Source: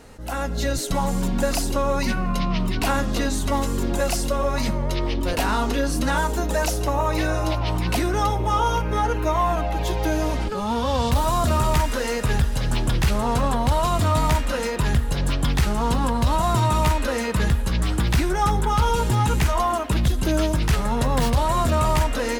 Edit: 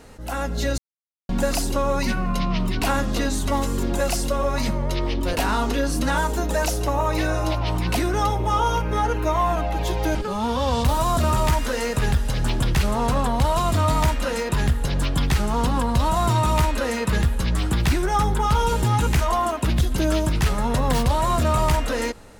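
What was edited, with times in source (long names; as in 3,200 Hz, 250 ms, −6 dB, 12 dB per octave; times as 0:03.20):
0:00.78–0:01.29: silence
0:10.15–0:10.42: remove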